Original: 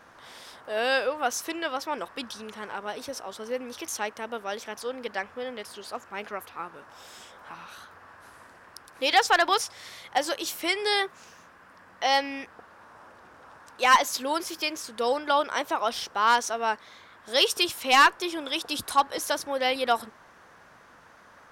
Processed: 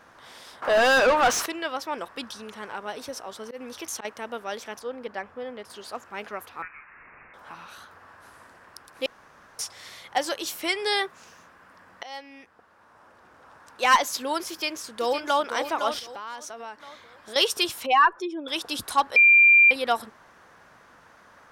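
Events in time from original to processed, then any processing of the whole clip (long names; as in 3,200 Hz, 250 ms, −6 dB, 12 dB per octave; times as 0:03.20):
0:00.62–0:01.46: mid-hump overdrive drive 28 dB, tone 2,500 Hz, clips at −11 dBFS
0:02.73–0:04.05: volume swells 112 ms
0:04.79–0:05.70: high-shelf EQ 2,100 Hz −10 dB
0:06.62–0:07.34: voice inversion scrambler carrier 2,700 Hz
0:09.06–0:09.59: fill with room tone
0:12.03–0:13.84: fade in, from −19.5 dB
0:14.49–0:15.47: delay throw 510 ms, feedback 40%, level −7.5 dB
0:15.99–0:17.36: downward compressor 4 to 1, threshold −36 dBFS
0:17.86–0:18.48: expanding power law on the bin magnitudes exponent 1.9
0:19.16–0:19.71: beep over 2,380 Hz −11.5 dBFS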